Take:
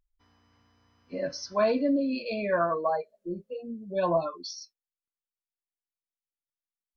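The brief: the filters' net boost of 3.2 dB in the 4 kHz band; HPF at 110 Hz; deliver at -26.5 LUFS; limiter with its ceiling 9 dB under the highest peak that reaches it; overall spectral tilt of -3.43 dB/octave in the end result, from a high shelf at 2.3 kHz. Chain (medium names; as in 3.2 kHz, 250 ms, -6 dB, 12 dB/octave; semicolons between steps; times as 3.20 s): high-pass 110 Hz; treble shelf 2.3 kHz -4.5 dB; peaking EQ 4 kHz +8.5 dB; trim +5.5 dB; peak limiter -16 dBFS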